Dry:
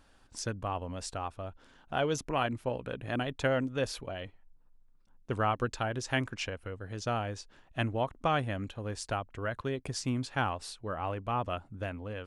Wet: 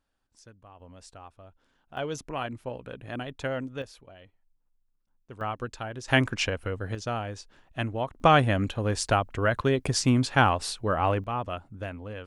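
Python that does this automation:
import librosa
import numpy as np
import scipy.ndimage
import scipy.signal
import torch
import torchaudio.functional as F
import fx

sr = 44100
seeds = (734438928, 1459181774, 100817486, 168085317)

y = fx.gain(x, sr, db=fx.steps((0.0, -17.0), (0.8, -10.0), (1.97, -2.5), (3.82, -11.0), (5.41, -3.0), (6.08, 8.5), (6.95, 1.0), (8.2, 10.0), (11.24, 1.0)))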